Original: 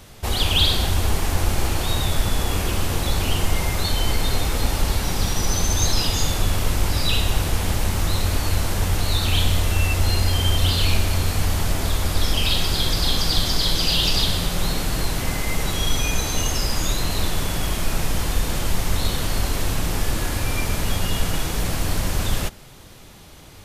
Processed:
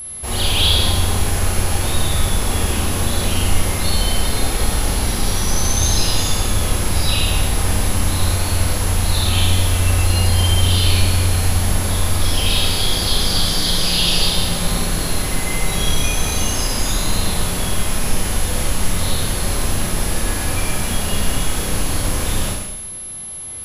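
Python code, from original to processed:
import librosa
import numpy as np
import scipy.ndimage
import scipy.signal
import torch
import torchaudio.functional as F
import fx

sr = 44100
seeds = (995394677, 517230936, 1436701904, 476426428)

y = fx.rev_schroeder(x, sr, rt60_s=1.0, comb_ms=30, drr_db=-5.0)
y = y + 10.0 ** (-25.0 / 20.0) * np.sin(2.0 * np.pi * 11000.0 * np.arange(len(y)) / sr)
y = y * 10.0 ** (-3.0 / 20.0)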